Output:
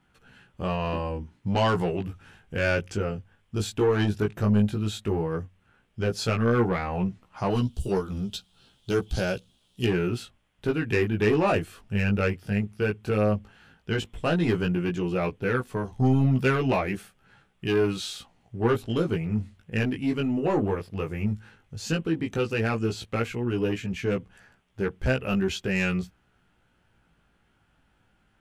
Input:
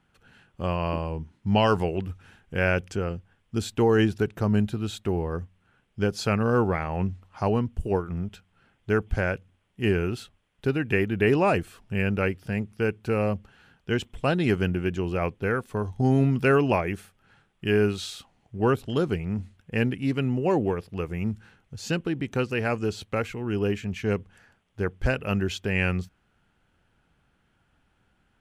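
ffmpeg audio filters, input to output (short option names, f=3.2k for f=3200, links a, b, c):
-filter_complex "[0:a]asettb=1/sr,asplit=3[a][b][c];[a]atrim=end=7.504[d];[b]atrim=start=7.5:end=9.85,asetpts=PTS-STARTPTS,afade=t=in:d=0.004:c=qsin,afade=t=out:st=2.346:d=0.004:c=qsin,highshelf=f=2.8k:t=q:w=3:g=10.5[e];[c]atrim=start=9.846[f];[d][e]acrossfade=d=0.004:c1=hsin:c2=qsin[g];[g][f]acrossfade=d=0.004:c1=qsin:c2=hsin,asoftclip=type=tanh:threshold=-18dB,flanger=delay=15.5:depth=4:speed=0.12,volume=4.5dB"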